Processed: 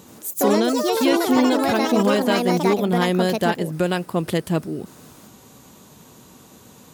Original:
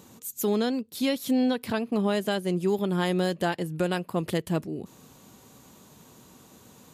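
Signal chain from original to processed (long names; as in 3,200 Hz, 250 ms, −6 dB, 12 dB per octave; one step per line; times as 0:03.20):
delay with pitch and tempo change per echo 82 ms, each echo +5 semitones, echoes 3
level +5.5 dB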